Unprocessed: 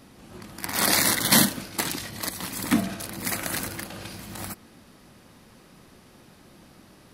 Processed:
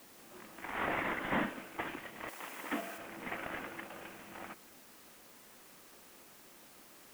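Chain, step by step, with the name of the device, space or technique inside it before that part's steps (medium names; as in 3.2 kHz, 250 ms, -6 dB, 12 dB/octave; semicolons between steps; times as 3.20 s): army field radio (band-pass 320–2900 Hz; CVSD coder 16 kbps; white noise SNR 17 dB); 2.28–2.98 s: tone controls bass -13 dB, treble +7 dB; trim -6 dB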